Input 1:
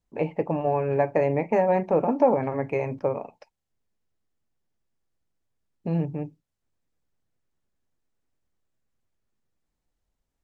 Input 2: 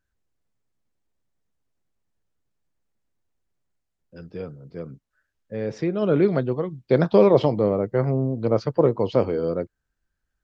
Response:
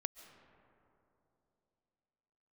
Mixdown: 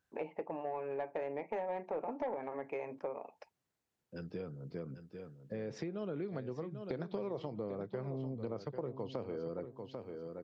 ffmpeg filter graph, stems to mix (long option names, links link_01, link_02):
-filter_complex "[0:a]highpass=350,highshelf=frequency=4600:gain=-8.5,asoftclip=type=tanh:threshold=-14dB,volume=-2dB[link_01];[1:a]highpass=97,acompressor=threshold=-30dB:ratio=2.5,volume=-1dB,asplit=3[link_02][link_03][link_04];[link_03]volume=-11.5dB[link_05];[link_04]apad=whole_len=460196[link_06];[link_01][link_06]sidechaincompress=threshold=-55dB:ratio=8:attack=16:release=390[link_07];[link_05]aecho=0:1:793|1586|2379:1|0.2|0.04[link_08];[link_07][link_02][link_08]amix=inputs=3:normalize=0,equalizer=frequency=580:width_type=o:width=0.23:gain=-2.5,acompressor=threshold=-41dB:ratio=2.5"